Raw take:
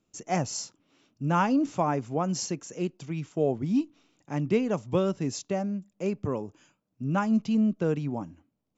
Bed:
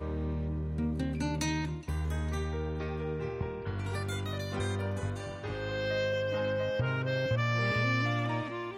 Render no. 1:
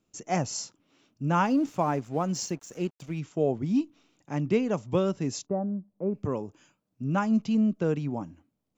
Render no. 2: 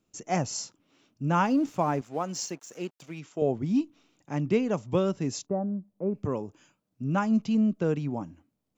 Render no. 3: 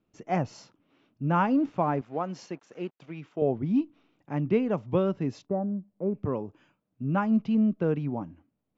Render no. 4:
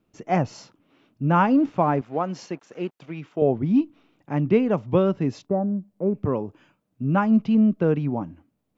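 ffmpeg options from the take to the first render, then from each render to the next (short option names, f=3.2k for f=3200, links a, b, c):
-filter_complex "[0:a]asettb=1/sr,asplit=3[a][b][c];[a]atrim=end=1.454[d];[b]atrim=start=1.45:end=3.19,asetpts=PTS-STARTPTS,afade=t=in:d=0.004:c=qsin,afade=t=out:st=1.736:d=0.004:c=qsin,aeval=exprs='sgn(val(0))*max(abs(val(0))-0.00266,0)':c=same[e];[c]atrim=start=3.186[f];[d][e]acrossfade=d=0.004:c1=hsin:c2=qsin[g];[g][f]acrossfade=d=0.004:c1=qsin:c2=hsin,asplit=3[h][i][j];[h]afade=t=out:st=5.45:d=0.02[k];[i]lowpass=f=1.1k:w=0.5412,lowpass=f=1.1k:w=1.3066,afade=t=in:st=5.45:d=0.02,afade=t=out:st=6.13:d=0.02[l];[j]afade=t=in:st=6.13:d=0.02[m];[k][l][m]amix=inputs=3:normalize=0"
-filter_complex "[0:a]asettb=1/sr,asplit=3[a][b][c];[a]atrim=end=2.014[d];[b]atrim=start=2.01:end=3.42,asetpts=PTS-STARTPTS,afade=t=in:d=0.004:c=qsin,afade=t=out:st=1.406:d=0.004:c=qsin,highpass=f=410:p=1[e];[c]atrim=start=3.416[f];[d][e]acrossfade=d=0.004:c1=hsin:c2=qsin[g];[g][f]acrossfade=d=0.004:c1=qsin:c2=hsin"
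-af "lowpass=3.5k,aemphasis=mode=reproduction:type=50fm"
-af "volume=5.5dB"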